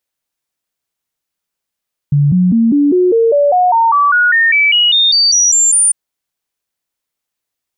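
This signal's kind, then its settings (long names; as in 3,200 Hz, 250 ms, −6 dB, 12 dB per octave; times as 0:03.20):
stepped sweep 144 Hz up, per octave 3, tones 19, 0.20 s, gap 0.00 s −7 dBFS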